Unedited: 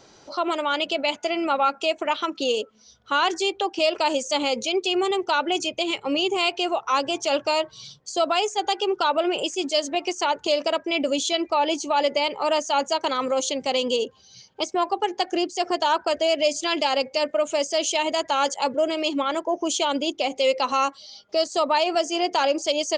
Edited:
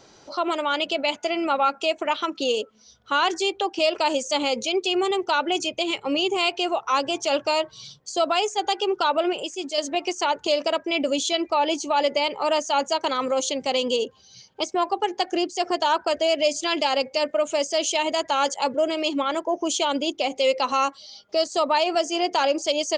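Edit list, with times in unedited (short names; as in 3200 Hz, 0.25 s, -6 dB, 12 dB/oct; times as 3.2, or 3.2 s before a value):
9.33–9.78 gain -4.5 dB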